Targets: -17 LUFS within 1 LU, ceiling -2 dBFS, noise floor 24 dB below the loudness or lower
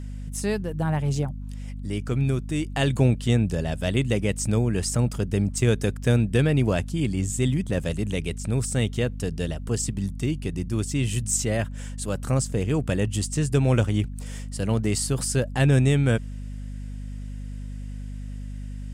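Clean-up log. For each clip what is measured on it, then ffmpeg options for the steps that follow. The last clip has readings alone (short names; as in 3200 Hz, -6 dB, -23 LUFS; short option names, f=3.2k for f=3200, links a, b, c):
hum 50 Hz; harmonics up to 250 Hz; hum level -31 dBFS; loudness -25.0 LUFS; peak -9.0 dBFS; loudness target -17.0 LUFS
-> -af "bandreject=f=50:t=h:w=6,bandreject=f=100:t=h:w=6,bandreject=f=150:t=h:w=6,bandreject=f=200:t=h:w=6,bandreject=f=250:t=h:w=6"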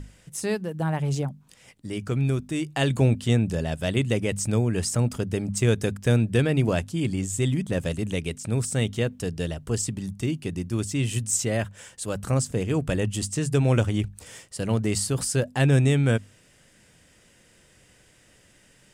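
hum none; loudness -25.5 LUFS; peak -9.0 dBFS; loudness target -17.0 LUFS
-> -af "volume=8.5dB,alimiter=limit=-2dB:level=0:latency=1"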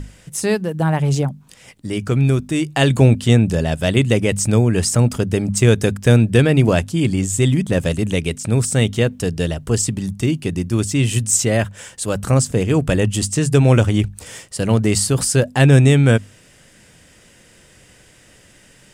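loudness -17.0 LUFS; peak -2.0 dBFS; noise floor -50 dBFS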